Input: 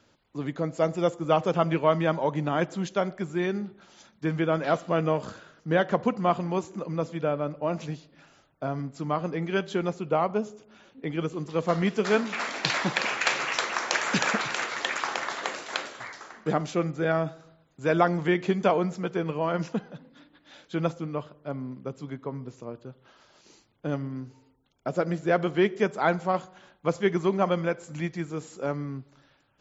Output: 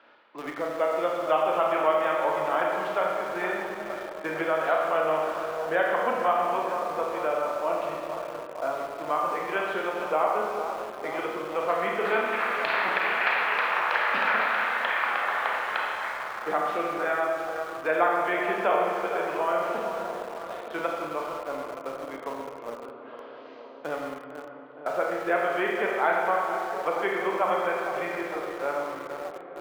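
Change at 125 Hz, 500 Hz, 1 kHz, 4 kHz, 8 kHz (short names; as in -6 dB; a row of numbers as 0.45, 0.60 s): -18.5 dB, +0.5 dB, +4.5 dB, -3.5 dB, n/a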